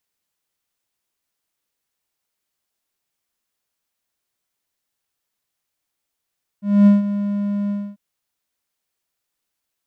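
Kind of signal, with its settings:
note with an ADSR envelope triangle 203 Hz, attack 245 ms, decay 155 ms, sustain −12.5 dB, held 1.08 s, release 263 ms −4.5 dBFS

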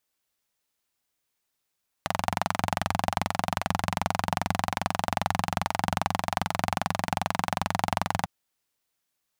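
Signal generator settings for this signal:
pulse-train model of a single-cylinder engine, steady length 6.20 s, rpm 2,700, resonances 98/170/770 Hz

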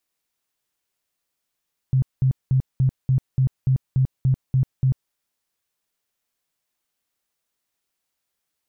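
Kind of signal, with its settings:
tone bursts 131 Hz, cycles 12, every 0.29 s, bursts 11, −14.5 dBFS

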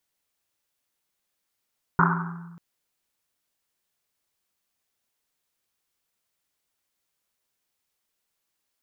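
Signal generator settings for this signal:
drum after Risset length 0.59 s, pitch 170 Hz, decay 1.52 s, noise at 1,200 Hz, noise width 630 Hz, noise 50%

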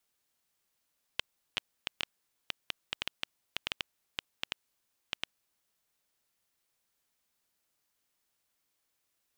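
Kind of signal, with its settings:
Geiger counter clicks 4.3 per second −13.5 dBFS 5.04 s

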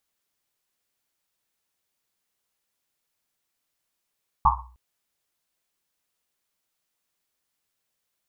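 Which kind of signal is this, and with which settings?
drum after Risset length 0.31 s, pitch 61 Hz, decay 0.60 s, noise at 1,000 Hz, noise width 300 Hz, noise 70%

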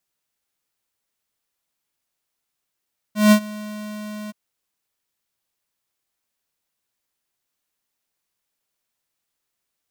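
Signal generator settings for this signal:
note with an ADSR envelope square 211 Hz, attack 166 ms, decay 79 ms, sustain −22 dB, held 1.15 s, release 23 ms −10 dBFS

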